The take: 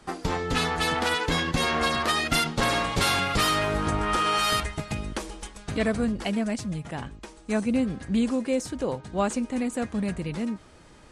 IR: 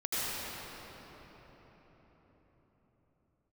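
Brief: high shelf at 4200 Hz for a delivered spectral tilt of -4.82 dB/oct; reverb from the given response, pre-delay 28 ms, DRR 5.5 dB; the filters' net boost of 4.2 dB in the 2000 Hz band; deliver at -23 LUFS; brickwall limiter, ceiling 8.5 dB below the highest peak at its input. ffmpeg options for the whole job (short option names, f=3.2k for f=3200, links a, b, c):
-filter_complex "[0:a]equalizer=f=2k:t=o:g=6,highshelf=f=4.2k:g=-4.5,alimiter=limit=-18dB:level=0:latency=1,asplit=2[a][b];[1:a]atrim=start_sample=2205,adelay=28[c];[b][c]afir=irnorm=-1:irlink=0,volume=-14dB[d];[a][d]amix=inputs=2:normalize=0,volume=4dB"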